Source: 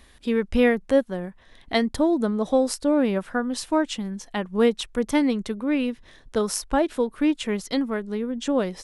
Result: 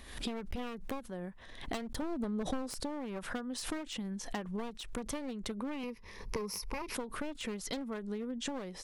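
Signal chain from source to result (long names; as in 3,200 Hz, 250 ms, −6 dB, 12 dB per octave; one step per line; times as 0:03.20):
wavefolder on the positive side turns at −23.5 dBFS
0:05.83–0:06.95: EQ curve with evenly spaced ripples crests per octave 0.84, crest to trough 13 dB
downward compressor 16 to 1, threshold −35 dBFS, peak gain reduction 22 dB
0:02.02–0:02.80: low-shelf EQ 340 Hz +6 dB
background raised ahead of every attack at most 81 dB per second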